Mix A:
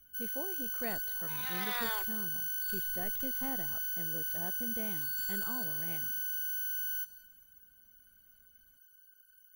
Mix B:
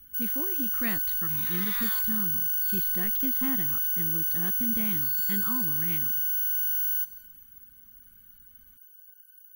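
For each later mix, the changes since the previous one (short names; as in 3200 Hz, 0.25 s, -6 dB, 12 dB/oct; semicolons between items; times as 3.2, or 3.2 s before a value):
speech +10.5 dB; first sound: add high shelf 8700 Hz +10.5 dB; master: add band shelf 600 Hz -14 dB 1.3 oct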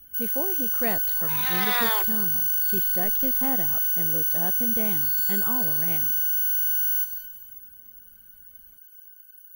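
first sound: send +11.5 dB; second sound +11.5 dB; master: add band shelf 600 Hz +14 dB 1.3 oct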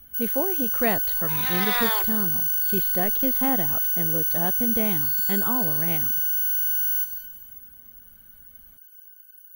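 speech +5.0 dB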